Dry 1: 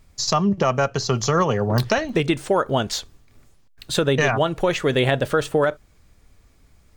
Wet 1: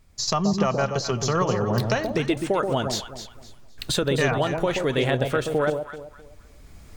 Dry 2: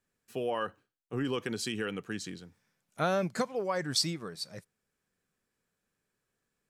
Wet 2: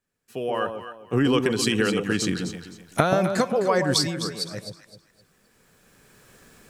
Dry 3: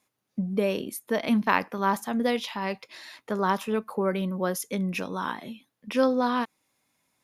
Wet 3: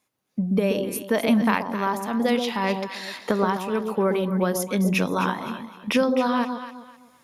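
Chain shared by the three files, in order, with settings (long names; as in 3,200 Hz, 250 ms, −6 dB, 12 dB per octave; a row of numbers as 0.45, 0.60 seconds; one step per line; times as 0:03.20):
camcorder AGC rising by 11 dB per second
on a send: delay that swaps between a low-pass and a high-pass 129 ms, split 880 Hz, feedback 52%, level −4.5 dB
on the sum: loudness normalisation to −24 LKFS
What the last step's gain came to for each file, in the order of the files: −4.5, −0.5, −1.0 decibels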